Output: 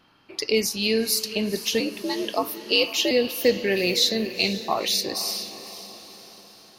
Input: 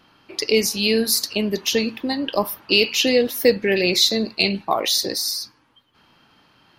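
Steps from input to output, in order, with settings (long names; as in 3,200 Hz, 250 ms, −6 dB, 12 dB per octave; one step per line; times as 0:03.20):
0:01.80–0:03.11: frequency shifter +70 Hz
feedback delay with all-pass diffusion 484 ms, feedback 50%, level −13 dB
level −4 dB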